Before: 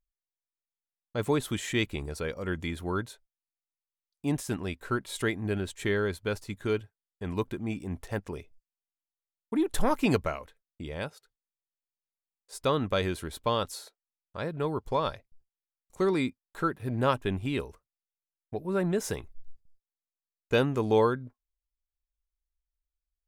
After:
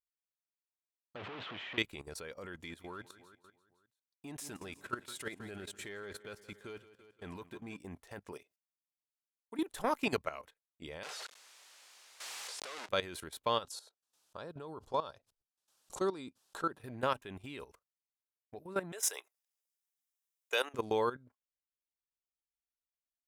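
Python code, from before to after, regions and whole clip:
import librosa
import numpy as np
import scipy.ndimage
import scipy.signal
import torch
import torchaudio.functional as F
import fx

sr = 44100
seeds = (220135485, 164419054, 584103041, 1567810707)

y = fx.chain(x, sr, fx.clip_1bit(),
    fx.ellip_bandpass(low_hz=100.0, high_hz=3100.0, order=3, stop_db=50), at=(1.16, 1.78))
y = fx.chain(y, sr, fx.halfwave_gain(db=-3.0),
    fx.echo_feedback(ms=170, feedback_pct=57, wet_db=-16), at=(2.53, 7.79))
y = fx.chain(y, sr, fx.highpass(hz=200.0, slope=12),
    fx.high_shelf(hz=5800.0, db=5.5), at=(8.32, 9.69))
y = fx.chain(y, sr, fx.clip_1bit(),
    fx.bandpass_edges(low_hz=520.0, high_hz=7200.0),
    fx.pre_swell(db_per_s=22.0), at=(11.03, 12.89))
y = fx.chain(y, sr, fx.lowpass(hz=10000.0, slope=12),
    fx.peak_eq(hz=2100.0, db=-11.0, octaves=0.57),
    fx.pre_swell(db_per_s=140.0), at=(13.64, 16.81))
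y = fx.chain(y, sr, fx.highpass(hz=440.0, slope=24),
    fx.high_shelf(hz=2700.0, db=10.0),
    fx.notch(hz=4400.0, q=5.2), at=(18.92, 20.74))
y = fx.highpass(y, sr, hz=63.0, slope=6)
y = fx.low_shelf(y, sr, hz=340.0, db=-10.5)
y = fx.level_steps(y, sr, step_db=15)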